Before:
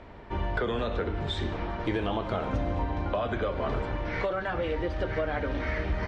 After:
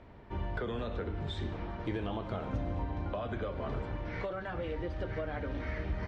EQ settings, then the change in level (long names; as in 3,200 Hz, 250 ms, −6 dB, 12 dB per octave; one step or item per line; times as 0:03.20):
parametric band 120 Hz +5.5 dB 2.7 octaves
−9.0 dB